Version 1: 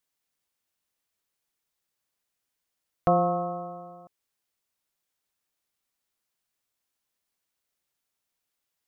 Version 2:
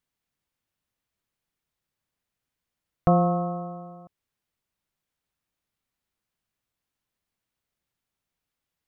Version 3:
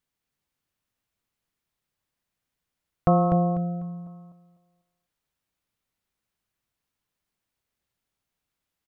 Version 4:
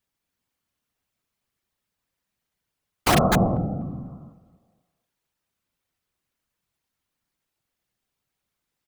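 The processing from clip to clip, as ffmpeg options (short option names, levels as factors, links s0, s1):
-af "bass=f=250:g=9,treble=f=4000:g=-6"
-af "aecho=1:1:248|496|744|992:0.501|0.14|0.0393|0.011"
-af "aeval=exprs='(mod(3.98*val(0)+1,2)-1)/3.98':c=same,afftfilt=real='hypot(re,im)*cos(2*PI*random(0))':imag='hypot(re,im)*sin(2*PI*random(1))':win_size=512:overlap=0.75,volume=2.51"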